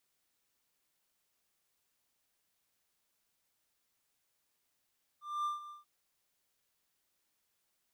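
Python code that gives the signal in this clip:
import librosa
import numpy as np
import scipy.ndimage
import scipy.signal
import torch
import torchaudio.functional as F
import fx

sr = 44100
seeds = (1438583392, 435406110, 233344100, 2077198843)

y = fx.adsr_tone(sr, wave='triangle', hz=1190.0, attack_ms=239.0, decay_ms=146.0, sustain_db=-14.5, held_s=0.49, release_ms=145.0, level_db=-29.0)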